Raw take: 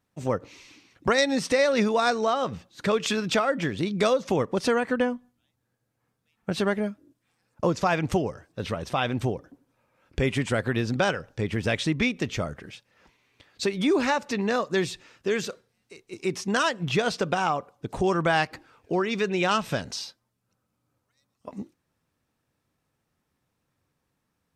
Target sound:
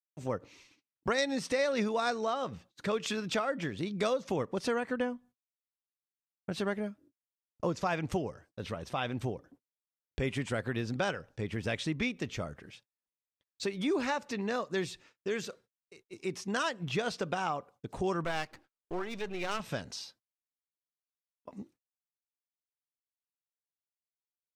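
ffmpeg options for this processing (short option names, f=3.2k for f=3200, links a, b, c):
-filter_complex "[0:a]asettb=1/sr,asplit=3[a][b][c];[a]atrim=end=18.244[d];[b]atrim=start=18.24:end=19.6,asetpts=PTS-STARTPTS,afade=t=in:d=0.004:c=qsin,afade=t=out:st=1.356:d=0.004:c=qsin,aeval=exprs='if(lt(val(0),0),0.251*val(0),val(0))':c=same[e];[c]atrim=start=19.596[f];[d][e]acrossfade=d=0.004:c1=hsin:c2=qsin[g];[g][f]acrossfade=d=0.004:c1=qsin:c2=hsin,agate=range=-38dB:threshold=-50dB:ratio=16:detection=peak,volume=-8dB"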